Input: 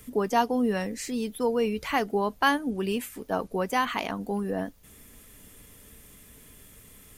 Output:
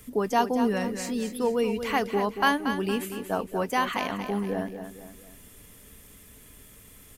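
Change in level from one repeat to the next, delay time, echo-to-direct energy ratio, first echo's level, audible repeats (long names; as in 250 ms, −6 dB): −7.5 dB, 231 ms, −8.0 dB, −9.0 dB, 3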